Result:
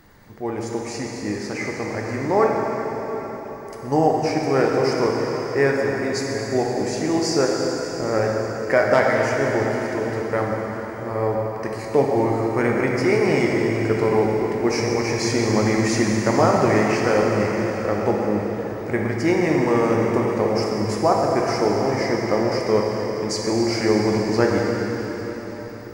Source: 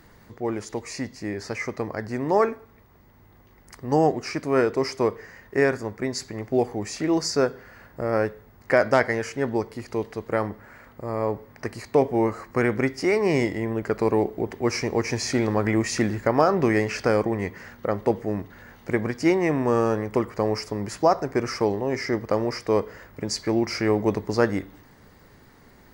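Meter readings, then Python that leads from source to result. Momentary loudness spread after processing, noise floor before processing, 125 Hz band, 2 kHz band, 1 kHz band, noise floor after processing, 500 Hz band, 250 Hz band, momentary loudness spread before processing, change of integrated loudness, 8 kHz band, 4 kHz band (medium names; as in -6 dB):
9 LU, -53 dBFS, +4.5 dB, +4.0 dB, +4.5 dB, -32 dBFS, +4.0 dB, +4.0 dB, 11 LU, +3.5 dB, +4.0 dB, +4.0 dB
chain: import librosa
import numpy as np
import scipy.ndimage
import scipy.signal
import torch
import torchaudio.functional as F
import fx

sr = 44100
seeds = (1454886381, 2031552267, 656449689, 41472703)

y = fx.rev_plate(x, sr, seeds[0], rt60_s=4.9, hf_ratio=0.95, predelay_ms=0, drr_db=-2.0)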